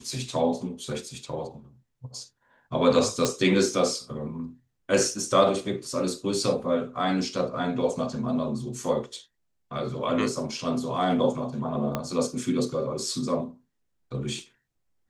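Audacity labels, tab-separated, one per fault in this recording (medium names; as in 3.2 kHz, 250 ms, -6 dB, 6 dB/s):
3.250000	3.250000	pop -9 dBFS
11.950000	11.950000	pop -13 dBFS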